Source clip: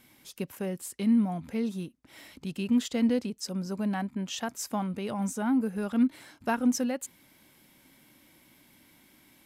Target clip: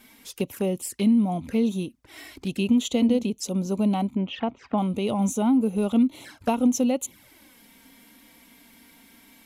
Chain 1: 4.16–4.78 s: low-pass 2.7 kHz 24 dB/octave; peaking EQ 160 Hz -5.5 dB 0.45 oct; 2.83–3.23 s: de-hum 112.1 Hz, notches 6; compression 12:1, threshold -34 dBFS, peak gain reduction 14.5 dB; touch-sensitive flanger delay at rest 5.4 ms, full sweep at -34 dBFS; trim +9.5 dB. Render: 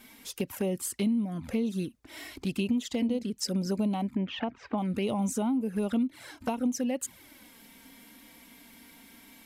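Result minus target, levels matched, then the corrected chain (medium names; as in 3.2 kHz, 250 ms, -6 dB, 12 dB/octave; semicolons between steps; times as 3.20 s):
compression: peak gain reduction +8 dB
4.16–4.78 s: low-pass 2.7 kHz 24 dB/octave; peaking EQ 160 Hz -5.5 dB 0.45 oct; 2.83–3.23 s: de-hum 112.1 Hz, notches 6; compression 12:1, threshold -25 dBFS, peak gain reduction 6.5 dB; touch-sensitive flanger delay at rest 5.4 ms, full sweep at -34 dBFS; trim +9.5 dB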